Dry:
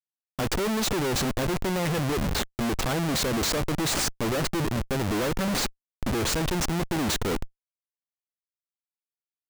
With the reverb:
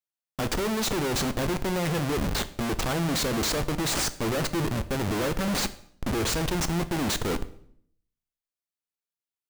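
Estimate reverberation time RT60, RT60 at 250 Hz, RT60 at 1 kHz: 0.65 s, 0.80 s, 0.60 s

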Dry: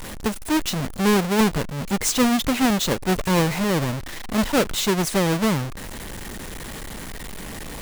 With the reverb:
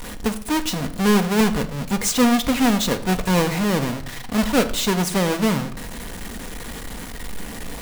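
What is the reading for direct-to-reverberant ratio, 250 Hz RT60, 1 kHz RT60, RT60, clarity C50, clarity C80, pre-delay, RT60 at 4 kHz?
7.5 dB, 0.90 s, 0.65 s, 0.60 s, 13.5 dB, 16.5 dB, 4 ms, 0.60 s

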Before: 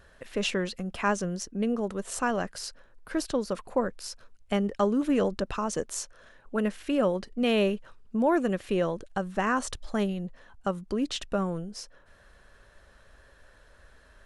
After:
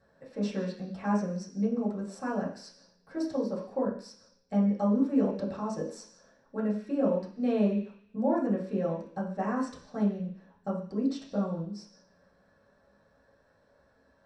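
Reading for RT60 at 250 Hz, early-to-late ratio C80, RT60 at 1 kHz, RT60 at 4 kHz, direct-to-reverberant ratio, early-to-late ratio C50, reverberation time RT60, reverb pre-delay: 0.50 s, 10.0 dB, 0.50 s, 0.85 s, -7.0 dB, 7.0 dB, 0.50 s, 3 ms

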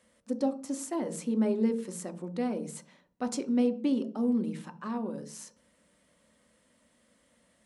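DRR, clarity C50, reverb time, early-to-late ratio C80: 8.5 dB, 16.0 dB, 0.40 s, 20.0 dB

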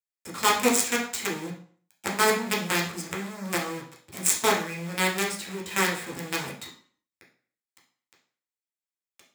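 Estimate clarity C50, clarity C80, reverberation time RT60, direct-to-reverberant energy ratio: 7.0 dB, 12.5 dB, 0.50 s, -3.5 dB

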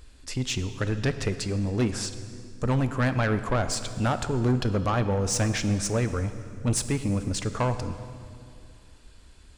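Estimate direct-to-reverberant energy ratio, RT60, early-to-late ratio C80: 10.0 dB, 2.5 s, 12.0 dB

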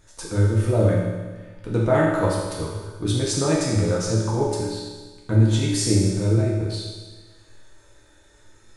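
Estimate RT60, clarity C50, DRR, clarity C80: 1.4 s, 1.0 dB, -5.0 dB, 2.5 dB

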